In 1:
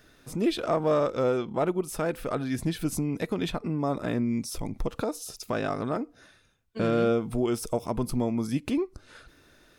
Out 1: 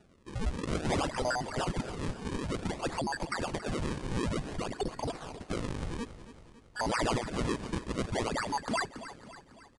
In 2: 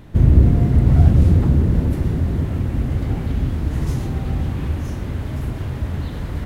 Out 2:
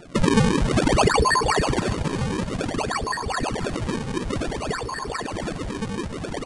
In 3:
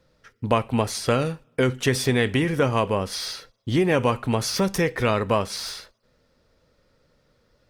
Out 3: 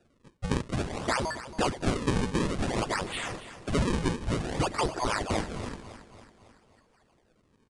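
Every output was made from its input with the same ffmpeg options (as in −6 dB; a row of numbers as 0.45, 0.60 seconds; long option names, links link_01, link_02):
-filter_complex "[0:a]afftfilt=real='real(if(lt(b,272),68*(eq(floor(b/68),0)*1+eq(floor(b/68),1)*2+eq(floor(b/68),2)*3+eq(floor(b/68),3)*0)+mod(b,68),b),0)':imag='imag(if(lt(b,272),68*(eq(floor(b/68),0)*1+eq(floor(b/68),1)*2+eq(floor(b/68),2)*3+eq(floor(b/68),3)*0)+mod(b,68),b),0)':win_size=2048:overlap=0.75,lowshelf=frequency=230:gain=-7.5,acrossover=split=4800[link_01][link_02];[link_02]acompressor=threshold=-33dB:ratio=4:attack=1:release=60[link_03];[link_01][link_03]amix=inputs=2:normalize=0,acrusher=samples=37:mix=1:aa=0.000001:lfo=1:lforange=59.2:lforate=0.55,asplit=2[link_04][link_05];[link_05]aecho=0:1:277|554|831|1108|1385:0.2|0.106|0.056|0.0297|0.0157[link_06];[link_04][link_06]amix=inputs=2:normalize=0,aresample=22050,aresample=44100,volume=-3.5dB"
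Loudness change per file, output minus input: −5.5, −5.0, −7.0 LU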